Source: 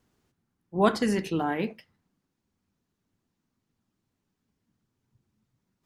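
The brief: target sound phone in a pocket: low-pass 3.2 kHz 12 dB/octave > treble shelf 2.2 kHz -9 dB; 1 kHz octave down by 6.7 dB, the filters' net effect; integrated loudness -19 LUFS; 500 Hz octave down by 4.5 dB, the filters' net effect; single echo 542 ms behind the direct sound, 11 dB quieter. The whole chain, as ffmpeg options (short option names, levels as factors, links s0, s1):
-af "lowpass=3200,equalizer=f=500:t=o:g=-4,equalizer=f=1000:t=o:g=-5.5,highshelf=f=2200:g=-9,aecho=1:1:542:0.282,volume=3.98"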